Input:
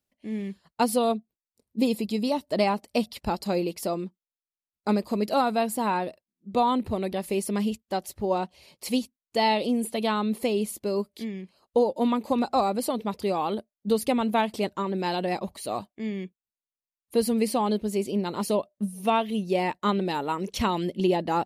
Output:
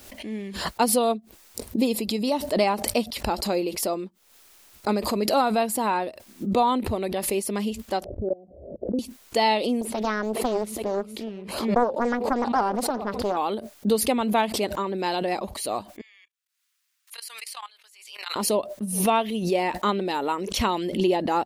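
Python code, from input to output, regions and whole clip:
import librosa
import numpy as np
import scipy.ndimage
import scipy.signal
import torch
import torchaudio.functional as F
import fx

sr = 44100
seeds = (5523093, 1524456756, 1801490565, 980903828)

y = fx.chain(x, sr, fx.steep_lowpass(hz=660.0, slope=72),
    fx.level_steps(step_db=24), at=(8.04, 8.99))
y = fx.chain(y, sr, fx.high_shelf(hz=2500.0, db=-11.5),
    fx.echo_feedback(ms=415, feedback_pct=30, wet_db=-21.0),
    fx.doppler_dist(depth_ms=0.9), at=(9.81, 13.37))
y = fx.chain(y, sr, fx.highpass(hz=1300.0, slope=24),
    fx.level_steps(step_db=19),
    fx.high_shelf(hz=9400.0, db=-4.5), at=(16.01, 18.36))
y = fx.peak_eq(y, sr, hz=150.0, db=-12.0, octaves=0.65)
y = fx.pre_swell(y, sr, db_per_s=62.0)
y = F.gain(torch.from_numpy(y), 2.0).numpy()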